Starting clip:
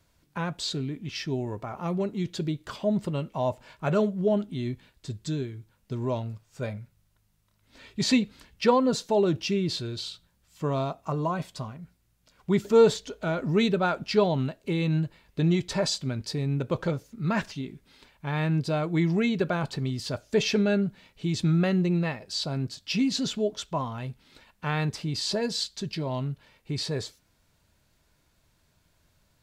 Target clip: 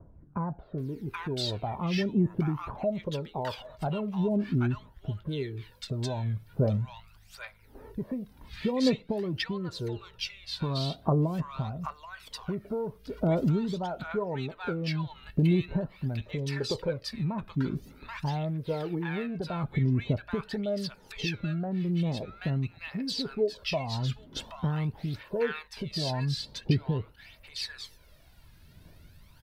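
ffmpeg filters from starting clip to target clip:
-filter_complex "[0:a]equalizer=f=7.2k:w=2:g=-11.5,acompressor=threshold=-37dB:ratio=5,aphaser=in_gain=1:out_gain=1:delay=2.5:decay=0.6:speed=0.45:type=triangular,acrossover=split=1100[a][b];[b]adelay=780[c];[a][c]amix=inputs=2:normalize=0,adynamicequalizer=threshold=0.00158:dfrequency=2300:dqfactor=0.7:tfrequency=2300:tqfactor=0.7:attack=5:release=100:ratio=0.375:range=3.5:mode=cutabove:tftype=highshelf,volume=7.5dB"

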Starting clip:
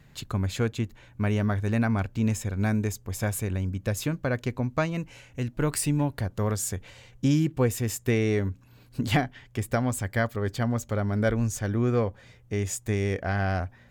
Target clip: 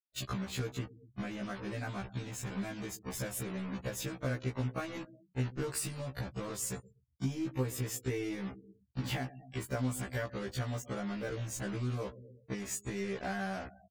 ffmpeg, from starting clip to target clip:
-af "acrusher=bits=5:mix=0:aa=0.000001,asoftclip=type=tanh:threshold=-15dB,aecho=1:1:123|246|369|492:0.0794|0.0445|0.0249|0.0139,afftfilt=real='re*gte(hypot(re,im),0.00891)':imag='im*gte(hypot(re,im),0.00891)':win_size=1024:overlap=0.75,acompressor=threshold=-32dB:ratio=6,afftfilt=real='re*1.73*eq(mod(b,3),0)':imag='im*1.73*eq(mod(b,3),0)':win_size=2048:overlap=0.75,volume=2dB"

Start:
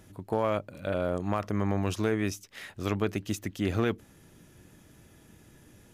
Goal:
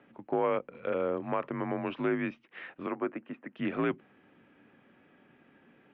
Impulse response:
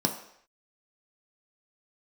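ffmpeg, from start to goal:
-filter_complex "[0:a]asettb=1/sr,asplit=3[a][b][c];[a]atrim=end=2.864[d];[b]atrim=start=2.86:end=3.56,asetpts=PTS-STARTPTS,afade=t=in:d=0.004:c=qsin,afade=t=out:st=0.696:d=0.004:c=qsin,acrossover=split=290 2100:gain=0.0708 1 0.0794[e][f][g];[e][f][g]amix=inputs=3:normalize=0[h];[c]atrim=start=3.556[i];[d][h]acrossfade=d=0.004:c1=hsin:c2=qsin[j];[j][i]acrossfade=d=0.004:c1=qsin:c2=hsin,highpass=f=280:t=q:w=0.5412,highpass=f=280:t=q:w=1.307,lowpass=f=2.9k:t=q:w=0.5176,lowpass=f=2.9k:t=q:w=0.7071,lowpass=f=2.9k:t=q:w=1.932,afreqshift=-69"

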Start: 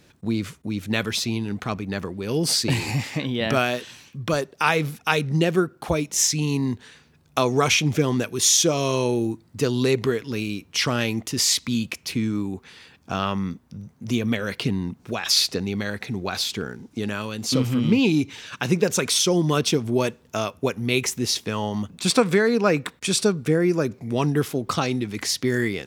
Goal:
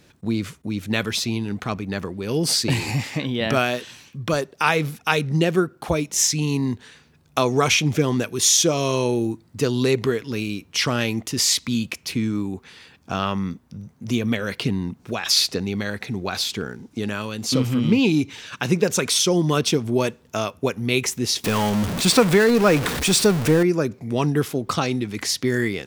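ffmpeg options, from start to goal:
-filter_complex "[0:a]asettb=1/sr,asplit=3[a][b][c];[a]atrim=end=21.444[d];[b]atrim=start=21.44:end=23.63,asetpts=PTS-STARTPTS,afade=t=in:d=0.004:c=qsin,afade=t=out:st=2.186:d=0.004:c=qsin,aeval=exprs='val(0)+0.5*0.0841*sgn(val(0))':c=same[e];[c]atrim=start=23.626[f];[d][e]acrossfade=d=0.004:c1=hsin:c2=qsin[g];[g][f]acrossfade=d=0.004:c1=qsin:c2=hsin,volume=1dB"

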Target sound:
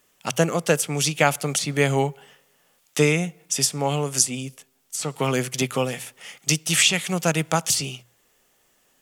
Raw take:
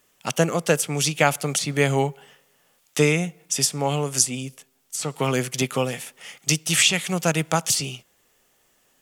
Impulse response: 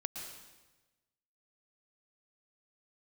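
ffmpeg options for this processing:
-af "bandreject=f=60:t=h:w=6,bandreject=f=120:t=h:w=6"

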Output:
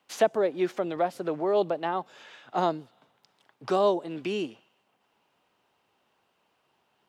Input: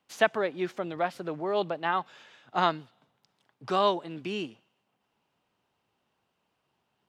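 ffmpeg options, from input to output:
-filter_complex "[0:a]bass=f=250:g=-8,treble=f=4k:g=-2,acrossover=split=720|5600[a][b][c];[b]acompressor=threshold=-44dB:ratio=6[d];[a][d][c]amix=inputs=3:normalize=0,volume=6.5dB"

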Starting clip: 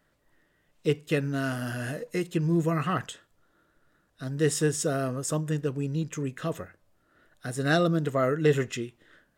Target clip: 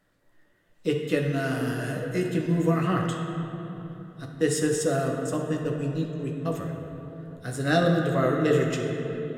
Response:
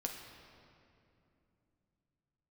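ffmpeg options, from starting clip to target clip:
-filter_complex "[0:a]asettb=1/sr,asplit=3[a][b][c];[a]atrim=end=4.254[d];[b]atrim=start=4.25:end=6.46,asetpts=PTS-STARTPTS,afade=t=in:d=0.004:c=qsin,afade=t=out:st=2.206:d=0.004:c=qsin,agate=range=-27dB:threshold=-30dB:ratio=16:detection=peak[e];[c]atrim=start=6.456[f];[d][e]acrossfade=d=0.004:c1=hsin:c2=qsin[g];[g][f]acrossfade=d=0.004:c1=qsin:c2=hsin[h];[1:a]atrim=start_sample=2205,asetrate=32193,aresample=44100[i];[h][i]afir=irnorm=-1:irlink=0"

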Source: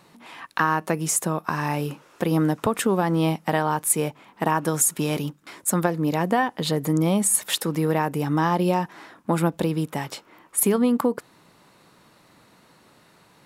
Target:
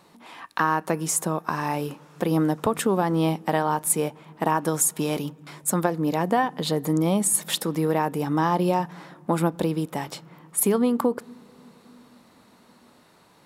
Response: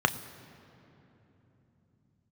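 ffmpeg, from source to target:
-filter_complex "[0:a]asplit=2[a][b];[1:a]atrim=start_sample=2205,lowpass=5.2k[c];[b][c]afir=irnorm=-1:irlink=0,volume=-26dB[d];[a][d]amix=inputs=2:normalize=0,volume=-1.5dB"

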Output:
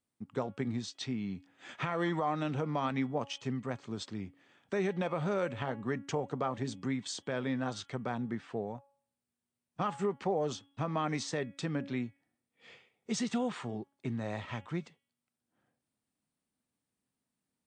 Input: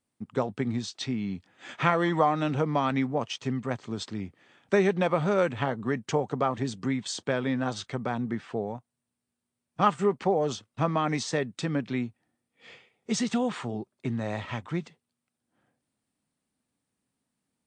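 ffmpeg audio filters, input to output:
-af "bandreject=f=278.8:t=h:w=4,bandreject=f=557.6:t=h:w=4,bandreject=f=836.4:t=h:w=4,bandreject=f=1.1152k:t=h:w=4,bandreject=f=1.394k:t=h:w=4,bandreject=f=1.6728k:t=h:w=4,bandreject=f=1.9516k:t=h:w=4,bandreject=f=2.2304k:t=h:w=4,bandreject=f=2.5092k:t=h:w=4,bandreject=f=2.788k:t=h:w=4,bandreject=f=3.0668k:t=h:w=4,bandreject=f=3.3456k:t=h:w=4,alimiter=limit=-16.5dB:level=0:latency=1:release=80,volume=-5.5dB"

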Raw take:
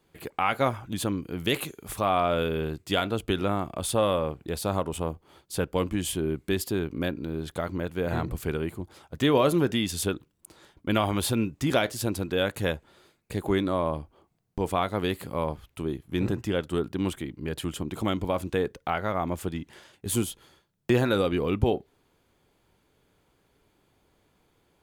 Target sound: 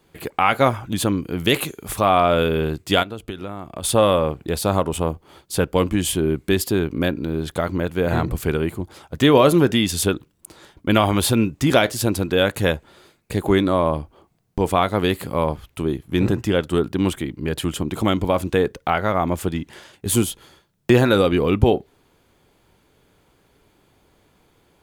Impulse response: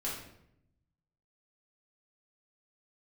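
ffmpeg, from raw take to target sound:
-filter_complex "[0:a]asplit=3[a][b][c];[a]afade=t=out:st=3.02:d=0.02[d];[b]acompressor=threshold=-35dB:ratio=16,afade=t=in:st=3.02:d=0.02,afade=t=out:st=3.83:d=0.02[e];[c]afade=t=in:st=3.83:d=0.02[f];[d][e][f]amix=inputs=3:normalize=0,volume=8dB"

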